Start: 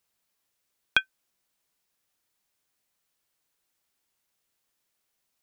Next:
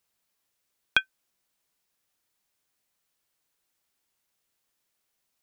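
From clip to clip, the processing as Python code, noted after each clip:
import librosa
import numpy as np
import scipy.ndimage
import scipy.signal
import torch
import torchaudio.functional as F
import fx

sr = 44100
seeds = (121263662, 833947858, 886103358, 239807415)

y = x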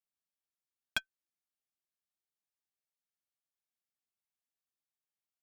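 y = fx.cheby_harmonics(x, sr, harmonics=(5, 6, 7), levels_db=(-19, -32, -15), full_scale_db=-4.5)
y = fx.notch_comb(y, sr, f0_hz=490.0)
y = y * librosa.db_to_amplitude(-8.5)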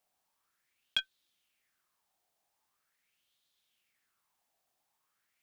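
y = fx.over_compress(x, sr, threshold_db=-36.0, ratio=-0.5)
y = fx.bell_lfo(y, sr, hz=0.43, low_hz=700.0, high_hz=3700.0, db=14)
y = y * librosa.db_to_amplitude(3.0)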